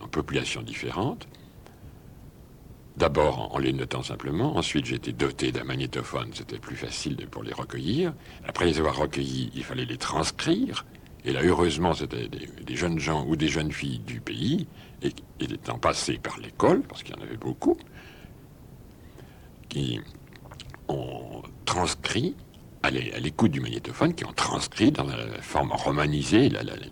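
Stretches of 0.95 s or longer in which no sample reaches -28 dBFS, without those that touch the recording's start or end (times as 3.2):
1.21–3
17.73–19.71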